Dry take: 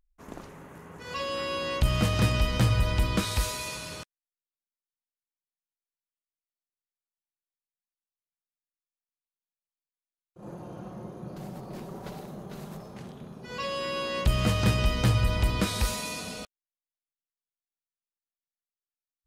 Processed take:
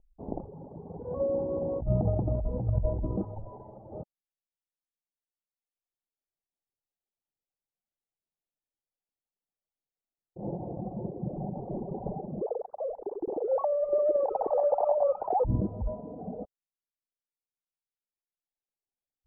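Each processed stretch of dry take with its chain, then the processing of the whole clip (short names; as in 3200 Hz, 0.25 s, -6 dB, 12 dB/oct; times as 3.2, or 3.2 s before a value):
3.35–3.95 minimum comb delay 9.1 ms + compressor 12:1, threshold -30 dBFS
12.41–15.45 sine-wave speech + tapped delay 88/866 ms -18/-3.5 dB + lo-fi delay 86 ms, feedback 80%, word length 7-bit, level -14 dB
whole clip: Chebyshev low-pass 830 Hz, order 5; reverb removal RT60 1.8 s; negative-ratio compressor -31 dBFS, ratio -1; gain +5.5 dB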